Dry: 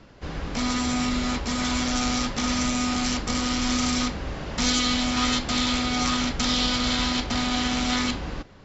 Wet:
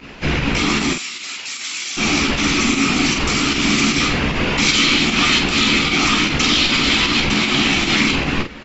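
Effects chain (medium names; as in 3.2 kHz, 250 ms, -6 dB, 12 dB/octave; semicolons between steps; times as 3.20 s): whisper effect; fifteen-band graphic EQ 100 Hz -8 dB, 250 Hz +3 dB, 630 Hz -4 dB, 2.5 kHz +11 dB; in parallel at -3 dB: compressor with a negative ratio -31 dBFS, ratio -0.5; 0.93–1.97 s: on the sum: differentiator; volume shaper 153 bpm, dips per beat 1, -11 dB, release 65 ms; on a send: early reflections 14 ms -6 dB, 47 ms -6.5 dB; on the sum: trim +3.5 dB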